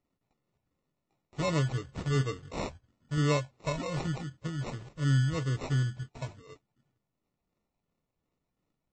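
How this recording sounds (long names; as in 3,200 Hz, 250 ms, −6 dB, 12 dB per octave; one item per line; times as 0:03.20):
phaser sweep stages 4, 2.8 Hz, lowest notch 430–2,900 Hz
aliases and images of a low sample rate 1,600 Hz, jitter 0%
MP3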